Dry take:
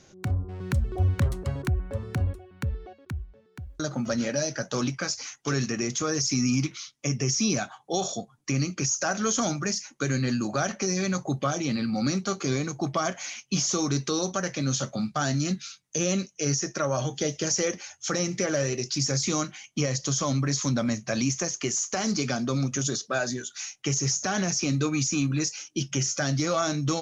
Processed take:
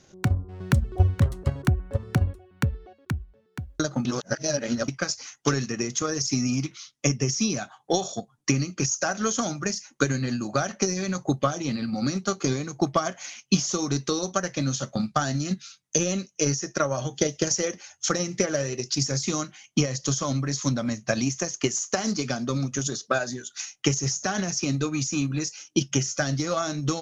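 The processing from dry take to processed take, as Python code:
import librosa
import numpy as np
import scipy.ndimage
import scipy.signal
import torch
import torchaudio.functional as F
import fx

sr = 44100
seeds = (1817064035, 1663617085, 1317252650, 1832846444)

y = fx.edit(x, sr, fx.reverse_span(start_s=4.05, length_s=0.83), tone=tone)
y = fx.notch(y, sr, hz=2300.0, q=23.0)
y = fx.transient(y, sr, attack_db=10, sustain_db=-2)
y = F.gain(torch.from_numpy(y), -2.0).numpy()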